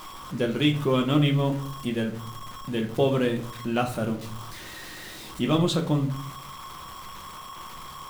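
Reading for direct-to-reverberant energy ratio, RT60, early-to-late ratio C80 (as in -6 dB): 3.0 dB, 0.55 s, 16.0 dB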